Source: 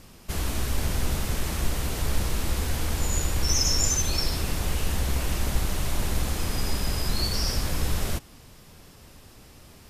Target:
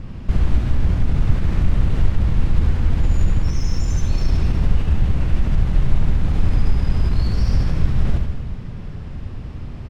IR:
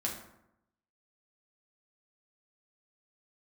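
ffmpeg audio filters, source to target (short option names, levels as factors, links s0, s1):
-filter_complex "[0:a]acrossover=split=2100[s0][s1];[s1]adynamicsmooth=sensitivity=4.5:basefreq=5500[s2];[s0][s2]amix=inputs=2:normalize=0,alimiter=limit=0.0944:level=0:latency=1:release=24,acompressor=threshold=0.0224:ratio=6,bass=f=250:g=14,treble=f=4000:g=-11,aecho=1:1:70|154|254.8|375.8|520.9:0.631|0.398|0.251|0.158|0.1,volume=2.11"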